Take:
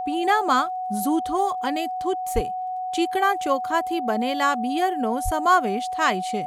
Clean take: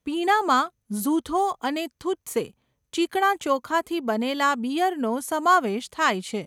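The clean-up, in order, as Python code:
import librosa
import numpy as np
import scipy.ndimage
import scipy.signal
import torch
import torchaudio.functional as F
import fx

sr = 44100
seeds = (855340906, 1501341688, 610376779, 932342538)

y = fx.fix_declick_ar(x, sr, threshold=6.5)
y = fx.notch(y, sr, hz=740.0, q=30.0)
y = fx.highpass(y, sr, hz=140.0, slope=24, at=(2.34, 2.46), fade=0.02)
y = fx.highpass(y, sr, hz=140.0, slope=24, at=(5.24, 5.36), fade=0.02)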